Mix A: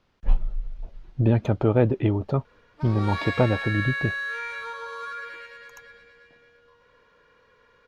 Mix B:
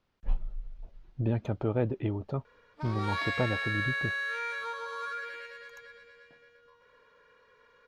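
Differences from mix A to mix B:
speech -9.0 dB; background: send -7.5 dB

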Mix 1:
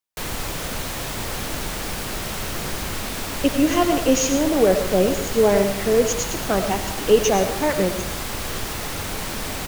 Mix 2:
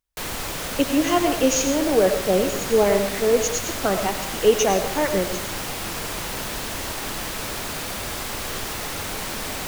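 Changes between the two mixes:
speech: entry -2.65 s; master: add bass shelf 230 Hz -5.5 dB

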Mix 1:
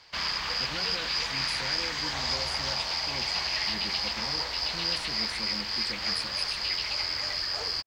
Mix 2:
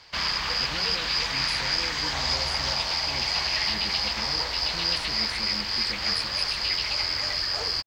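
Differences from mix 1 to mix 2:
background +3.5 dB; master: add bass shelf 160 Hz +3.5 dB

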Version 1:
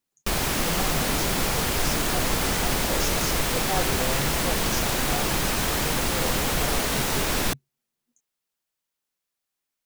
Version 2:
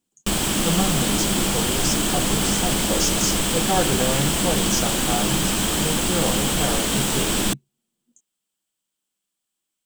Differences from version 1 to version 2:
speech +6.5 dB; master: add graphic EQ with 31 bands 200 Hz +11 dB, 315 Hz +7 dB, 2 kHz -3 dB, 3.15 kHz +8 dB, 8 kHz +11 dB

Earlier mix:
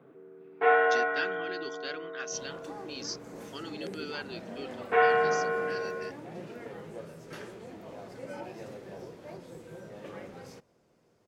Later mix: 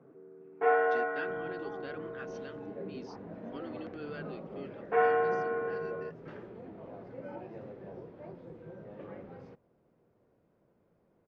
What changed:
second sound: entry -1.05 s; master: add tape spacing loss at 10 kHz 43 dB

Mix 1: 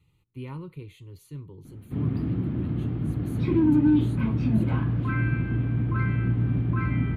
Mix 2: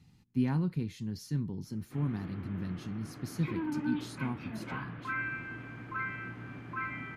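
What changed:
speech: remove static phaser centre 1.1 kHz, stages 8; background: add band-pass filter 1.7 kHz, Q 1

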